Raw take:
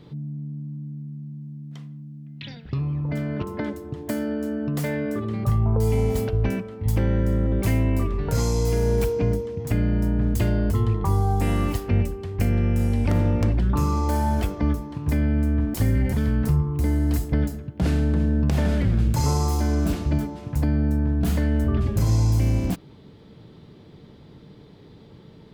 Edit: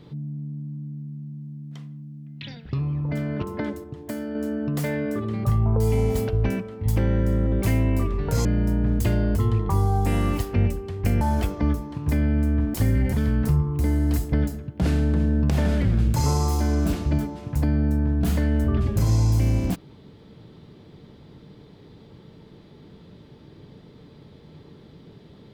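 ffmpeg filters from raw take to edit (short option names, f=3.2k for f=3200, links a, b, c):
-filter_complex "[0:a]asplit=5[a][b][c][d][e];[a]atrim=end=3.842[f];[b]atrim=start=3.838:end=4.352,asetpts=PTS-STARTPTS,volume=-4.5dB[g];[c]atrim=start=4.348:end=8.452[h];[d]atrim=start=9.798:end=12.562[i];[e]atrim=start=14.208[j];[f][g]acrossfade=d=0.004:c1=hsin:c2=hsin[k];[k][h]acrossfade=d=0.004:c1=hsin:c2=hsin[l];[l][i]acrossfade=d=0.004:c1=hsin:c2=hsin[m];[m][j]acrossfade=d=0.004:c1=hsin:c2=hsin"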